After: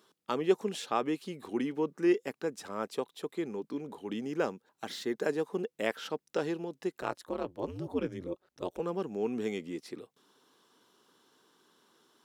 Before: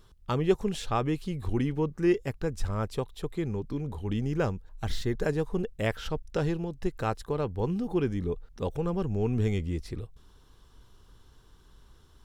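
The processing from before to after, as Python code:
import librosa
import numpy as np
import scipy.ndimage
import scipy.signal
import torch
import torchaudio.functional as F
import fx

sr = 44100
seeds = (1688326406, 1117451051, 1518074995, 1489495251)

y = scipy.signal.sosfilt(scipy.signal.butter(4, 230.0, 'highpass', fs=sr, output='sos'), x)
y = fx.ring_mod(y, sr, carrier_hz=91.0, at=(7.0, 8.8))
y = y * 10.0 ** (-1.5 / 20.0)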